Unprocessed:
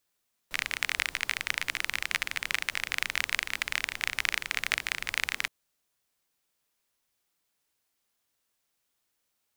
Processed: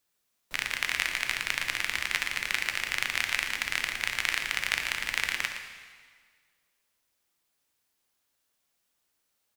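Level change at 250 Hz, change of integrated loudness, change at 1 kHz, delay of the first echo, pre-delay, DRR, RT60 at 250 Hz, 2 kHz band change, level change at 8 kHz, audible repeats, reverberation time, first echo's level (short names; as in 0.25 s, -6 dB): +2.0 dB, +1.5 dB, +1.5 dB, 0.115 s, 5 ms, 4.0 dB, 1.7 s, +1.5 dB, +1.5 dB, 1, 1.7 s, -10.0 dB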